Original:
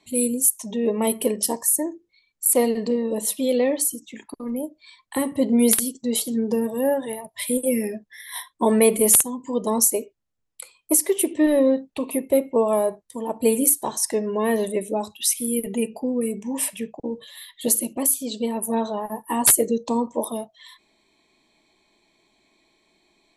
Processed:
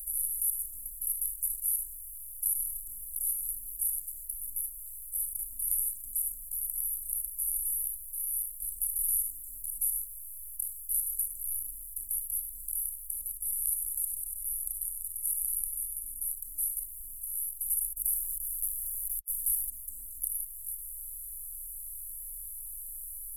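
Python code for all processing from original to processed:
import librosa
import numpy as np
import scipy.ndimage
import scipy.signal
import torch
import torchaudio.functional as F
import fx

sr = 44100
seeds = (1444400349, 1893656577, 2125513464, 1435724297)

y = fx.chain(x, sr, fx.resample_bad(factor=2, down='none', up='filtered'),
    fx.echo_feedback(ms=96, feedback_pct=55, wet_db=-22.5), at=(13.37, 16.22))
y = fx.chain(y, sr, fx.sample_gate(floor_db=-35.5),
    fx.doppler_dist(depth_ms=0.17), at=(17.93, 19.7))
y = fx.bin_compress(y, sr, power=0.2)
y = scipy.signal.sosfilt(scipy.signal.cheby2(4, 70, [190.0, 4700.0], 'bandstop', fs=sr, output='sos'), y)
y = fx.peak_eq(y, sr, hz=240.0, db=13.0, octaves=1.3)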